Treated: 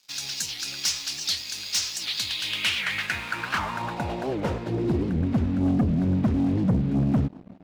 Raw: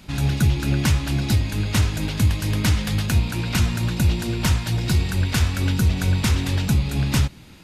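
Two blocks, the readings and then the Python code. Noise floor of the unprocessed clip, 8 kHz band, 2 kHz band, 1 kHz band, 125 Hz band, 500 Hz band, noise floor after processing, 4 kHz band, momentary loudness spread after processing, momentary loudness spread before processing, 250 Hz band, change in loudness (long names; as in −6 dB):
−44 dBFS, −0.5 dB, −1.0 dB, 0.0 dB, −9.0 dB, +1.0 dB, −43 dBFS, +1.5 dB, 6 LU, 2 LU, 0.0 dB, −4.0 dB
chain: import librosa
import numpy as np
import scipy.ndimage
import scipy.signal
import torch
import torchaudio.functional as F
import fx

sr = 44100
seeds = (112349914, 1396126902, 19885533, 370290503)

y = fx.filter_sweep_bandpass(x, sr, from_hz=5400.0, to_hz=240.0, start_s=1.97, end_s=5.25, q=2.9)
y = fx.leveller(y, sr, passes=3)
y = fx.record_warp(y, sr, rpm=78.0, depth_cents=250.0)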